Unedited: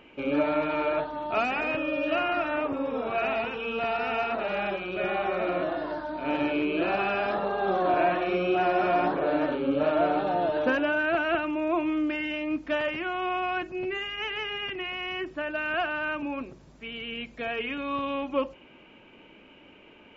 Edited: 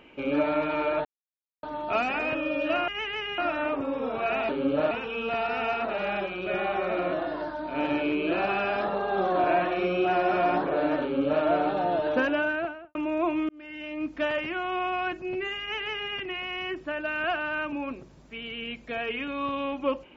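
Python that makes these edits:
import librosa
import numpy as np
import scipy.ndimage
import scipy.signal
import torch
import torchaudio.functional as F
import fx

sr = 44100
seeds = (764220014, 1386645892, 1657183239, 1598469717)

y = fx.studio_fade_out(x, sr, start_s=10.9, length_s=0.55)
y = fx.edit(y, sr, fx.insert_silence(at_s=1.05, length_s=0.58),
    fx.duplicate(start_s=9.52, length_s=0.42, to_s=3.41),
    fx.fade_in_span(start_s=11.99, length_s=0.7),
    fx.duplicate(start_s=14.11, length_s=0.5, to_s=2.3), tone=tone)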